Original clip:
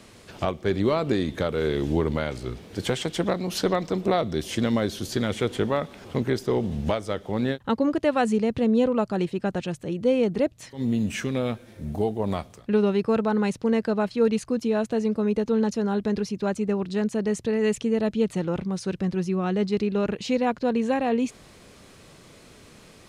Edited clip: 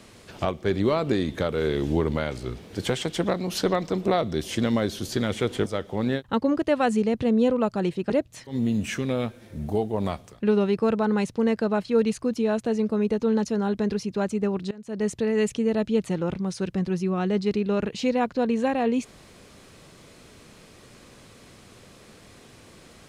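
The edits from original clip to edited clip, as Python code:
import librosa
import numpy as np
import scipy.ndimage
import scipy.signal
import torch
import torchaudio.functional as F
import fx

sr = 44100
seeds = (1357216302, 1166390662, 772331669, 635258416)

y = fx.edit(x, sr, fx.cut(start_s=5.66, length_s=1.36),
    fx.cut(start_s=9.46, length_s=0.9),
    fx.fade_in_from(start_s=16.97, length_s=0.33, curve='qua', floor_db=-21.0), tone=tone)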